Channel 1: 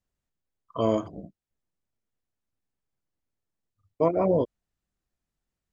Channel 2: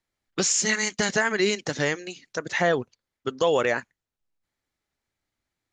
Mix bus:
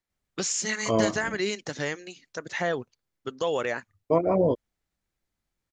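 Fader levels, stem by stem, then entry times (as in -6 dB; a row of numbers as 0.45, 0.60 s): +0.5, -5.5 dB; 0.10, 0.00 s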